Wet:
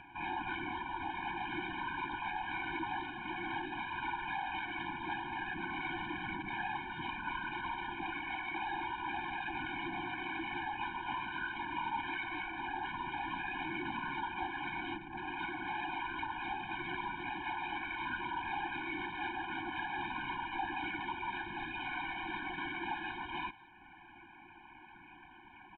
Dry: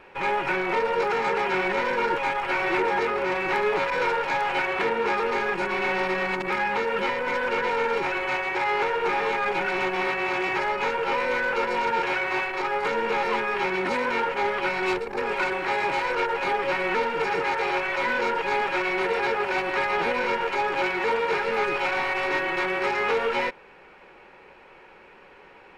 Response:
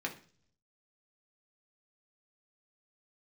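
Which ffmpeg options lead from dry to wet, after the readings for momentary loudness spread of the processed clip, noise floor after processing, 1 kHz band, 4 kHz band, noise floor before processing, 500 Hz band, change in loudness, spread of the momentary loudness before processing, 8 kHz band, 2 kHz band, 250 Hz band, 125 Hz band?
3 LU, -56 dBFS, -12.5 dB, -11.0 dB, -50 dBFS, -26.0 dB, -14.0 dB, 2 LU, under -30 dB, -13.0 dB, -10.0 dB, -7.5 dB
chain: -filter_complex "[0:a]aresample=11025,volume=18.8,asoftclip=hard,volume=0.0531,aresample=44100,asplit=2[s0][s1];[s1]adelay=180,highpass=300,lowpass=3400,asoftclip=type=hard:threshold=0.0266,volume=0.178[s2];[s0][s2]amix=inputs=2:normalize=0,afftfilt=real='hypot(re,im)*cos(2*PI*random(0))':imag='hypot(re,im)*sin(2*PI*random(1))':win_size=512:overlap=0.75,acompressor=mode=upward:threshold=0.00708:ratio=2.5,aresample=8000,aresample=44100,afftfilt=real='re*eq(mod(floor(b*sr/1024/360),2),0)':imag='im*eq(mod(floor(b*sr/1024/360),2),0)':win_size=1024:overlap=0.75,volume=0.794"

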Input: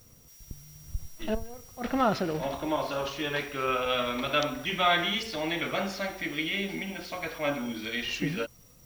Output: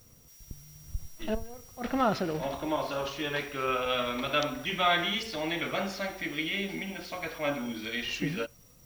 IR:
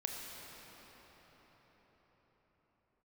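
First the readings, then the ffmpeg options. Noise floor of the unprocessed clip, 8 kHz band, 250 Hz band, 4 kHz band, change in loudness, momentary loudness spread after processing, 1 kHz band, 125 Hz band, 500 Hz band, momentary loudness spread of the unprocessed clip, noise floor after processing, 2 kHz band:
-56 dBFS, -1.0 dB, -1.5 dB, -1.5 dB, -1.5 dB, 13 LU, -1.5 dB, -1.5 dB, -1.5 dB, 13 LU, -57 dBFS, -1.5 dB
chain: -filter_complex "[0:a]asplit=2[s0][s1];[1:a]atrim=start_sample=2205,atrim=end_sample=3969[s2];[s1][s2]afir=irnorm=-1:irlink=0,volume=0.106[s3];[s0][s3]amix=inputs=2:normalize=0,volume=0.794"

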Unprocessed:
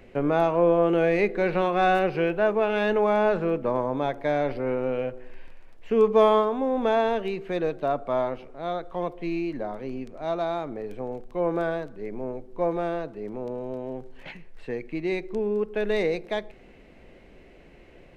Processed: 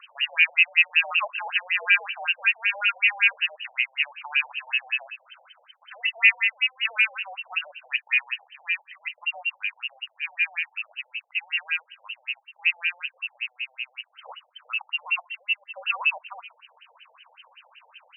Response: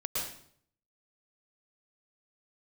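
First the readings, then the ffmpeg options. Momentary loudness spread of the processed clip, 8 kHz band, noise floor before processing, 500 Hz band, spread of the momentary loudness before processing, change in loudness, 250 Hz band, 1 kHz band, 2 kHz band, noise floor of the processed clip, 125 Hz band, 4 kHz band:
15 LU, no reading, -51 dBFS, -25.5 dB, 14 LU, +2.0 dB, under -40 dB, -10.0 dB, +12.5 dB, -65 dBFS, under -40 dB, +13.5 dB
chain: -filter_complex "[0:a]acrossover=split=1900[s0][s1];[s1]acompressor=mode=upward:threshold=0.00224:ratio=2.5[s2];[s0][s2]amix=inputs=2:normalize=0,aeval=exprs='val(0)+0.00224*(sin(2*PI*50*n/s)+sin(2*PI*2*50*n/s)/2+sin(2*PI*3*50*n/s)/3+sin(2*PI*4*50*n/s)/4+sin(2*PI*5*50*n/s)/5)':c=same,lowpass=f=2600:t=q:w=0.5098,lowpass=f=2600:t=q:w=0.6013,lowpass=f=2600:t=q:w=0.9,lowpass=f=2600:t=q:w=2.563,afreqshift=-3100,afftfilt=real='re*between(b*sr/1024,610*pow(2200/610,0.5+0.5*sin(2*PI*5.3*pts/sr))/1.41,610*pow(2200/610,0.5+0.5*sin(2*PI*5.3*pts/sr))*1.41)':imag='im*between(b*sr/1024,610*pow(2200/610,0.5+0.5*sin(2*PI*5.3*pts/sr))/1.41,610*pow(2200/610,0.5+0.5*sin(2*PI*5.3*pts/sr))*1.41)':win_size=1024:overlap=0.75,volume=1.88"

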